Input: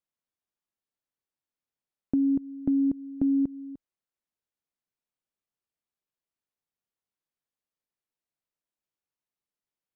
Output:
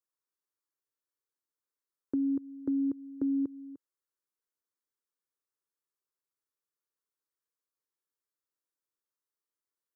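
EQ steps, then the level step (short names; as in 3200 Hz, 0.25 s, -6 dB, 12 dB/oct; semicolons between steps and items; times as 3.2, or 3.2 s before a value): Bessel high-pass 170 Hz; fixed phaser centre 710 Hz, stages 6; 0.0 dB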